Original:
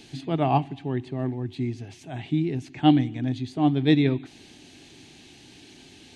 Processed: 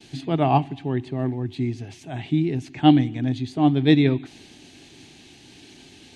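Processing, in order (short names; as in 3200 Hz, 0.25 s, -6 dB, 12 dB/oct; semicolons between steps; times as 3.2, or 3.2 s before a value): expander -47 dBFS; gain +3 dB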